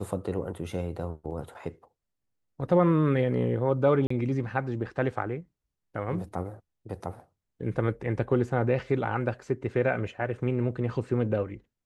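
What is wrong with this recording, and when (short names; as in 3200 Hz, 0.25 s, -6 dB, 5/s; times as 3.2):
4.07–4.1 gap 34 ms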